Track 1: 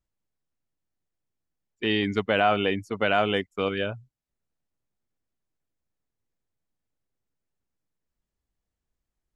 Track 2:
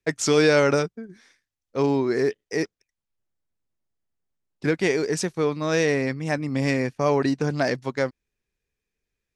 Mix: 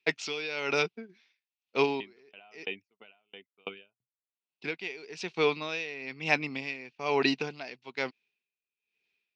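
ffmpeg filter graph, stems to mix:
-filter_complex "[0:a]alimiter=limit=0.211:level=0:latency=1:release=17,aeval=exprs='val(0)*pow(10,-36*if(lt(mod(3*n/s,1),2*abs(3)/1000),1-mod(3*n/s,1)/(2*abs(3)/1000),(mod(3*n/s,1)-2*abs(3)/1000)/(1-2*abs(3)/1000))/20)':c=same,volume=0.668,asplit=2[s0][s1];[1:a]highshelf=f=2400:g=11,volume=1.19[s2];[s1]apad=whole_len=412773[s3];[s2][s3]sidechaincompress=threshold=0.00398:ratio=10:attack=16:release=1010[s4];[s0][s4]amix=inputs=2:normalize=0,highpass=290,equalizer=f=300:t=q:w=4:g=-6,equalizer=f=550:t=q:w=4:g=-10,equalizer=f=1200:t=q:w=4:g=-5,equalizer=f=1700:t=q:w=4:g=-8,equalizer=f=2600:t=q:w=4:g=9,lowpass=f=4100:w=0.5412,lowpass=f=4100:w=1.3066,aeval=exprs='val(0)*pow(10,-19*(0.5-0.5*cos(2*PI*1.1*n/s))/20)':c=same"

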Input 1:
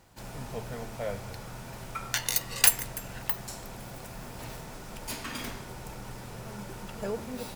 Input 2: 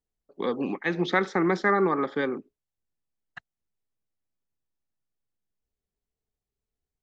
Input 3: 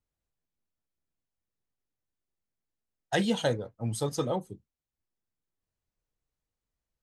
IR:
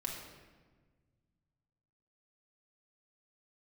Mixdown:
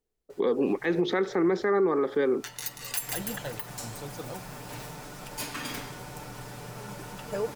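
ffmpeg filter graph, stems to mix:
-filter_complex "[0:a]lowshelf=f=71:g=-10.5,aecho=1:1:6.8:0.52,adelay=300,volume=1.12,asplit=2[s0][s1];[s1]volume=0.112[s2];[1:a]equalizer=f=420:w=1.8:g=10,volume=1.26,asplit=2[s3][s4];[2:a]volume=0.282[s5];[s4]apad=whole_len=346762[s6];[s0][s6]sidechaincompress=threshold=0.0316:ratio=8:attack=9.5:release=870[s7];[s2]aecho=0:1:185|370|555|740|925:1|0.37|0.137|0.0507|0.0187[s8];[s7][s3][s5][s8]amix=inputs=4:normalize=0,alimiter=limit=0.141:level=0:latency=1:release=116"

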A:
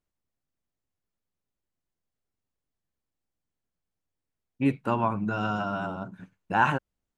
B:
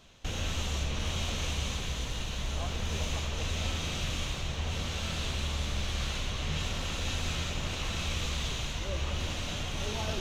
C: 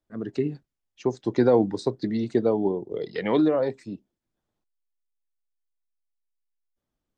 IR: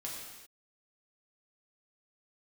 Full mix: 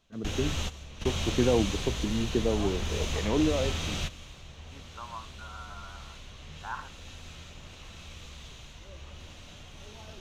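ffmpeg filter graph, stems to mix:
-filter_complex "[0:a]bandpass=f=1200:t=q:w=3:csg=0,adelay=100,volume=0.316[s0];[1:a]volume=1.12[s1];[2:a]lowshelf=f=180:g=8.5,volume=0.422,asplit=2[s2][s3];[s3]apad=whole_len=449887[s4];[s1][s4]sidechaingate=range=0.2:threshold=0.00224:ratio=16:detection=peak[s5];[s0][s5][s2]amix=inputs=3:normalize=0"

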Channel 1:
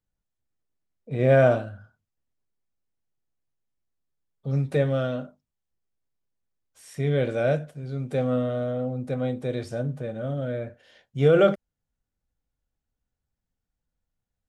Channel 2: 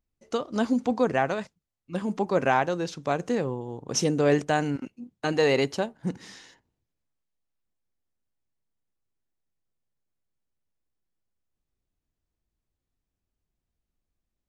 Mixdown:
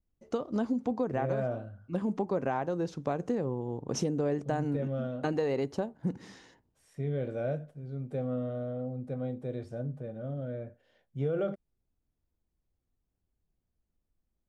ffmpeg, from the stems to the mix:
-filter_complex "[0:a]volume=0.237[s0];[1:a]adynamicequalizer=threshold=0.00708:dfrequency=2700:dqfactor=0.92:tfrequency=2700:tqfactor=0.92:attack=5:release=100:ratio=0.375:range=2.5:mode=cutabove:tftype=bell,volume=0.631[s1];[s0][s1]amix=inputs=2:normalize=0,tiltshelf=f=1300:g=6,acompressor=threshold=0.0447:ratio=6"

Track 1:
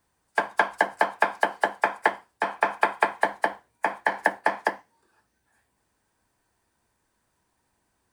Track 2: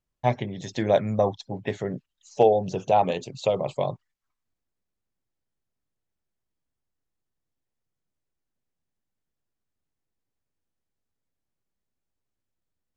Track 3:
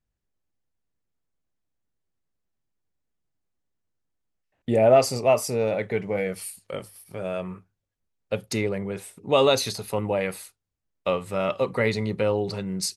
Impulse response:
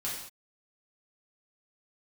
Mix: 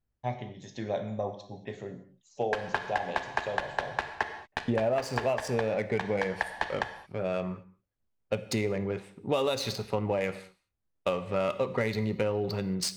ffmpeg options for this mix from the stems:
-filter_complex "[0:a]aeval=exprs='val(0)*gte(abs(val(0)),0.133)':c=same,lowpass=3900,adelay=2150,volume=0.531,asplit=2[s0][s1];[s1]volume=0.398[s2];[1:a]volume=0.211,asplit=2[s3][s4];[s4]volume=0.501[s5];[2:a]adynamicsmooth=sensitivity=5.5:basefreq=2600,volume=0.891,asplit=2[s6][s7];[s7]volume=0.188[s8];[3:a]atrim=start_sample=2205[s9];[s2][s5][s8]amix=inputs=3:normalize=0[s10];[s10][s9]afir=irnorm=-1:irlink=0[s11];[s0][s3][s6][s11]amix=inputs=4:normalize=0,acompressor=threshold=0.0631:ratio=12"

